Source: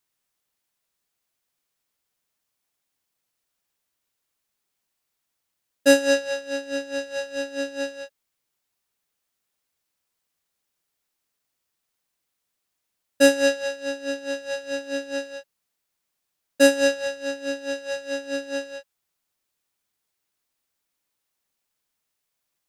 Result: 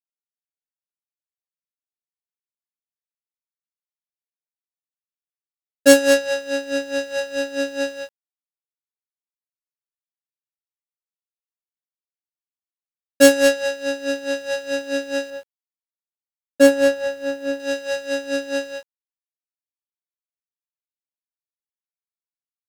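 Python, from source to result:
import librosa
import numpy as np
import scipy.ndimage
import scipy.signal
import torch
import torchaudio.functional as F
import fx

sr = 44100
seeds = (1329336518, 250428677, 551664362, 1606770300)

y = fx.self_delay(x, sr, depth_ms=0.088)
y = fx.high_shelf(y, sr, hz=2100.0, db=-9.0, at=(15.3, 17.6))
y = fx.quant_dither(y, sr, seeds[0], bits=10, dither='none')
y = F.gain(torch.from_numpy(y), 5.0).numpy()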